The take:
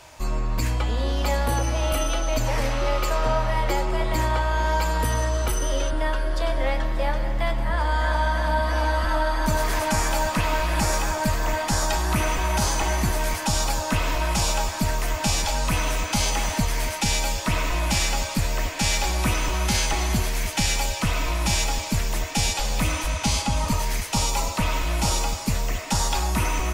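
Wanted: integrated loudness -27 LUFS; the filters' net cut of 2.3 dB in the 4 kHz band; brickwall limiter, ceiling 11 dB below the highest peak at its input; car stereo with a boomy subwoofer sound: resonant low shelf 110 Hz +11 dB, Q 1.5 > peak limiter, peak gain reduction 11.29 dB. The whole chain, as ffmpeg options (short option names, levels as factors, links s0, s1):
-af "equalizer=f=4000:t=o:g=-3,alimiter=limit=0.0794:level=0:latency=1,lowshelf=f=110:t=q:w=1.5:g=11,volume=1.58,alimiter=limit=0.126:level=0:latency=1"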